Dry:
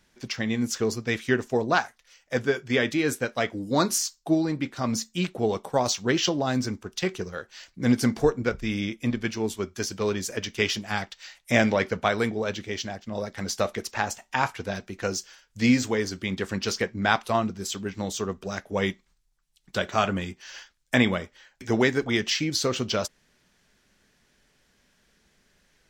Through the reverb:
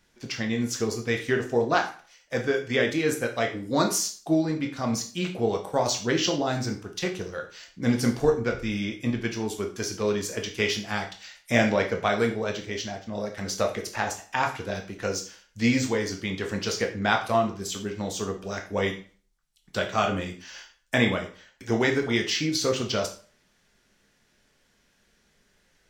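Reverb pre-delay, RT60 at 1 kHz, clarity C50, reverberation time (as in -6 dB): 7 ms, 0.40 s, 10.5 dB, 0.40 s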